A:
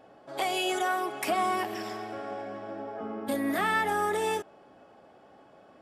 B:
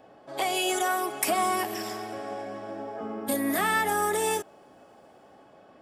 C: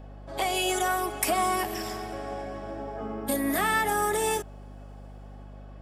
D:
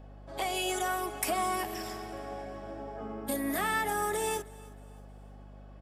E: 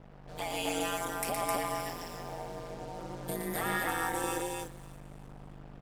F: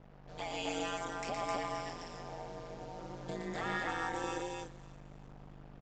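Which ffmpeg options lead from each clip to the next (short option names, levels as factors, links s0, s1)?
-filter_complex "[0:a]bandreject=f=1400:w=26,acrossover=split=710|6200[s0][s1][s2];[s2]dynaudnorm=f=110:g=11:m=3.35[s3];[s0][s1][s3]amix=inputs=3:normalize=0,volume=1.19"
-af "aeval=exprs='val(0)+0.00708*(sin(2*PI*50*n/s)+sin(2*PI*2*50*n/s)/2+sin(2*PI*3*50*n/s)/3+sin(2*PI*4*50*n/s)/4+sin(2*PI*5*50*n/s)/5)':c=same"
-af "aecho=1:1:315|630|945:0.0794|0.0286|0.0103,volume=0.562"
-af "acrusher=bits=7:mix=0:aa=0.5,aecho=1:1:116.6|259.5:0.562|0.794,aeval=exprs='val(0)*sin(2*PI*86*n/s)':c=same,volume=0.841"
-af "aresample=16000,aresample=44100,volume=0.631"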